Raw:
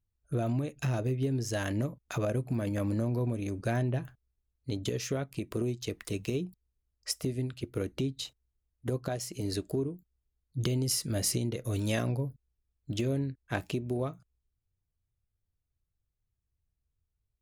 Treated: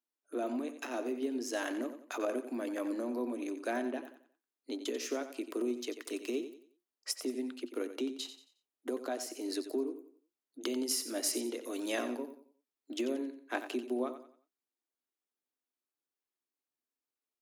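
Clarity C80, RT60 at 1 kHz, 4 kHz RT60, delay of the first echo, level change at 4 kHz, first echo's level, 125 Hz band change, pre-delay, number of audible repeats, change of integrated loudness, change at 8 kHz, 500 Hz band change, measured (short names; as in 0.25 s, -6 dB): none, none, none, 90 ms, -2.5 dB, -11.0 dB, under -35 dB, none, 3, -4.0 dB, -2.5 dB, -1.5 dB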